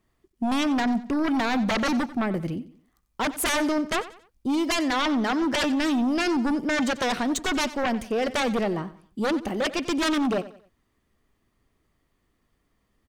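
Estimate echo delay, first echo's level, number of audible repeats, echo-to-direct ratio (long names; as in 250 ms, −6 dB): 91 ms, −16.0 dB, 3, −15.5 dB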